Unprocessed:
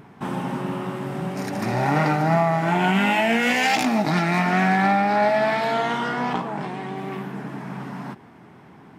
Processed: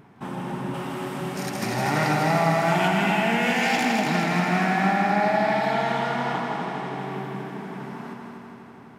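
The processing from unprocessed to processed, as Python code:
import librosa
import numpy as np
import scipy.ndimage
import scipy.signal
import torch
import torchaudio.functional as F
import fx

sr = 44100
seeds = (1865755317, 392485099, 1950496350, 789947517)

y = fx.high_shelf(x, sr, hz=2100.0, db=9.5, at=(0.74, 2.88))
y = fx.echo_heads(y, sr, ms=81, heads='second and third', feedback_pct=70, wet_db=-6)
y = F.gain(torch.from_numpy(y), -5.0).numpy()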